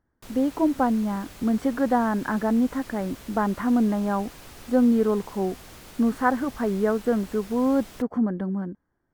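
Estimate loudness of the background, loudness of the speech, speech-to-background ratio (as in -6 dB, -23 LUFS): -44.5 LUFS, -24.5 LUFS, 20.0 dB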